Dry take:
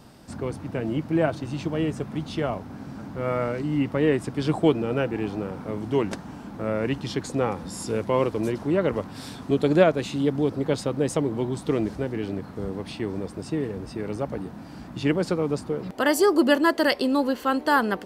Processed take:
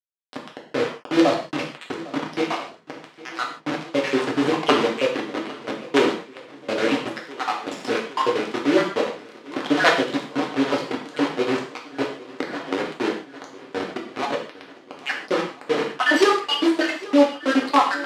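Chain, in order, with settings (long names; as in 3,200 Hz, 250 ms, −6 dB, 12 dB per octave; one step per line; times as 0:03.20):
time-frequency cells dropped at random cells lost 70%
mains-hum notches 50/100/150/200/250/300/350/400/450 Hz
in parallel at −10 dB: wave folding −26 dBFS
on the sum: bit reduction 5 bits
wrap-around overflow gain 12 dB
band-pass filter 290–3,900 Hz
feedback echo with a long and a short gap by turns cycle 1,343 ms, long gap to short 1.5 to 1, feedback 55%, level −19.5 dB
reverb whose tail is shaped and stops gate 180 ms falling, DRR −1 dB
0:12.40–0:12.88: multiband upward and downward compressor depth 100%
level +5 dB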